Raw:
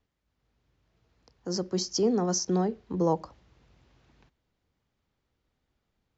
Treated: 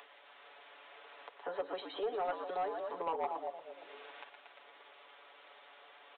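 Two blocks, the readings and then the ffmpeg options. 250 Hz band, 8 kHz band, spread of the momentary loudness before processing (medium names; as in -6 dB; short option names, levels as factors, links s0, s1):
-23.0 dB, no reading, 8 LU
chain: -filter_complex "[0:a]asplit=9[s0][s1][s2][s3][s4][s5][s6][s7][s8];[s1]adelay=116,afreqshift=-75,volume=0.422[s9];[s2]adelay=232,afreqshift=-150,volume=0.248[s10];[s3]adelay=348,afreqshift=-225,volume=0.146[s11];[s4]adelay=464,afreqshift=-300,volume=0.0871[s12];[s5]adelay=580,afreqshift=-375,volume=0.0513[s13];[s6]adelay=696,afreqshift=-450,volume=0.0302[s14];[s7]adelay=812,afreqshift=-525,volume=0.0178[s15];[s8]adelay=928,afreqshift=-600,volume=0.0105[s16];[s0][s9][s10][s11][s12][s13][s14][s15][s16]amix=inputs=9:normalize=0,acompressor=threshold=0.0398:ratio=16,highpass=f=550:w=0.5412,highpass=f=550:w=1.3066,aecho=1:1:7:0.88,aresample=8000,asoftclip=type=tanh:threshold=0.0251,aresample=44100,acompressor=mode=upward:threshold=0.00562:ratio=2.5,volume=1.68"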